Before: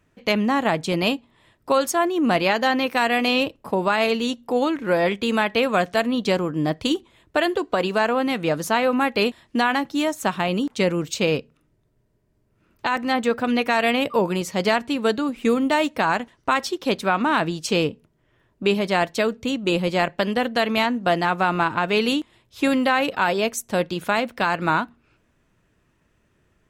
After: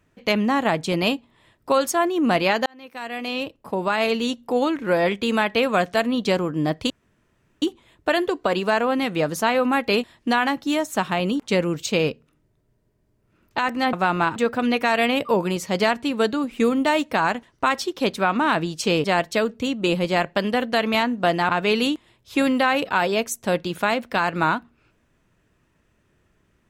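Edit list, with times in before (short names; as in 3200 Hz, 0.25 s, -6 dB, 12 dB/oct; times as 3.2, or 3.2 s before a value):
2.66–4.21 fade in
6.9 insert room tone 0.72 s
17.89–18.87 cut
21.32–21.75 move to 13.21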